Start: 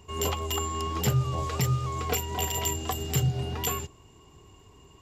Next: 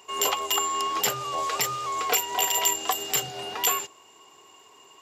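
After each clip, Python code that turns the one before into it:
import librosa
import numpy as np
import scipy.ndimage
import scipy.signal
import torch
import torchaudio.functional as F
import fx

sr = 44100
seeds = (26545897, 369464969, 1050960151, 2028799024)

y = scipy.signal.sosfilt(scipy.signal.butter(2, 610.0, 'highpass', fs=sr, output='sos'), x)
y = y * librosa.db_to_amplitude(7.0)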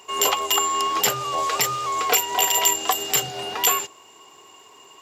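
y = fx.quant_companded(x, sr, bits=8)
y = y * librosa.db_to_amplitude(4.5)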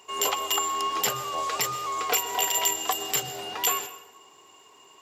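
y = fx.rev_plate(x, sr, seeds[0], rt60_s=1.0, hf_ratio=0.6, predelay_ms=105, drr_db=13.5)
y = y * librosa.db_to_amplitude(-5.5)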